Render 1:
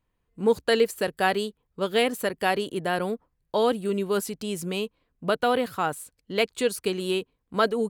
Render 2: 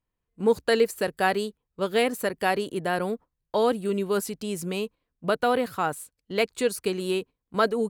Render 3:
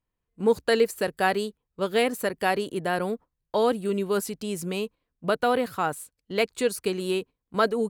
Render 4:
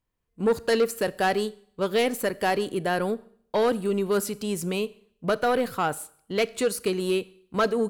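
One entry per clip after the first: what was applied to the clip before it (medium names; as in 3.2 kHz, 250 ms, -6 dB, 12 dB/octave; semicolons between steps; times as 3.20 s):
gate -40 dBFS, range -8 dB; dynamic bell 3.2 kHz, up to -5 dB, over -46 dBFS, Q 3.7
no audible change
saturation -18 dBFS, distortion -14 dB; Schroeder reverb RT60 0.61 s, combs from 27 ms, DRR 19 dB; trim +2.5 dB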